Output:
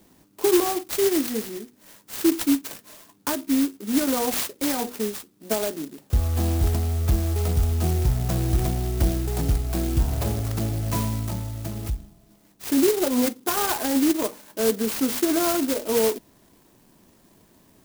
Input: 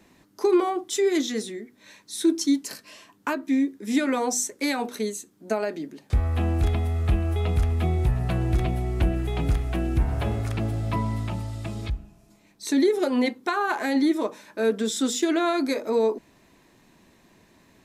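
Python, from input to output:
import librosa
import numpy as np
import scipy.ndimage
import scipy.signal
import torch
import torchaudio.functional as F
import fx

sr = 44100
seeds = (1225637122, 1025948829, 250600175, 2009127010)

y = fx.clock_jitter(x, sr, seeds[0], jitter_ms=0.13)
y = y * librosa.db_to_amplitude(1.0)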